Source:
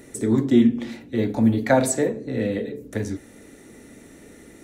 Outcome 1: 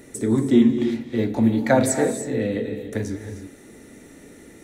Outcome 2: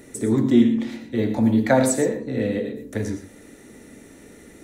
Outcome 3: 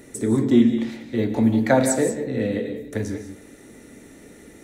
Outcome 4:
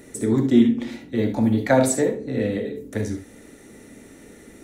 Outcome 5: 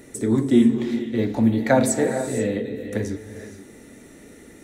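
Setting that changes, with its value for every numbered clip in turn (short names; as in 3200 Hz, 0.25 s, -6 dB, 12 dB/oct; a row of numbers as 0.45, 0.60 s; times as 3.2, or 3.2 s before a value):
non-linear reverb, gate: 340, 140, 220, 90, 510 ms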